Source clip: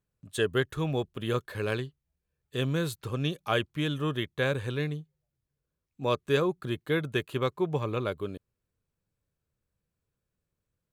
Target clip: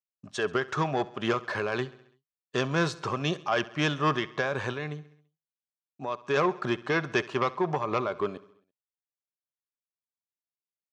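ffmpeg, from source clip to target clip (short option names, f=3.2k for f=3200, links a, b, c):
-filter_complex "[0:a]agate=range=-33dB:threshold=-50dB:ratio=3:detection=peak,equalizer=f=830:w=0.9:g=13,asettb=1/sr,asplit=3[a][b][c];[a]atrim=end=4.724[d];[b]atrim=start=4.72:end=6.21,asetpts=PTS-STARTPTS,afade=t=in:d=0.004:c=qsin,afade=t=out:st=1.486:d=0.004:c=qsin,acompressor=threshold=-31dB:ratio=8[e];[c]atrim=start=6.206[f];[d][e]acrossfade=d=0.004:c1=hsin:c2=qsin[g];[g][f]acrossfade=d=0.004:c1=qsin:c2=hsin,alimiter=limit=-15.5dB:level=0:latency=1:release=108,tremolo=f=3.9:d=0.49,asoftclip=type=tanh:threshold=-20.5dB,highpass=180,equalizer=f=300:t=q:w=4:g=-5,equalizer=f=490:t=q:w=4:g=-9,equalizer=f=860:t=q:w=4:g=-4,equalizer=f=3.6k:t=q:w=4:g=-4,equalizer=f=5.6k:t=q:w=4:g=9,lowpass=f=6.6k:w=0.5412,lowpass=f=6.6k:w=1.3066,aecho=1:1:67|134|201|268|335:0.106|0.0614|0.0356|0.0207|0.012,volume=7dB"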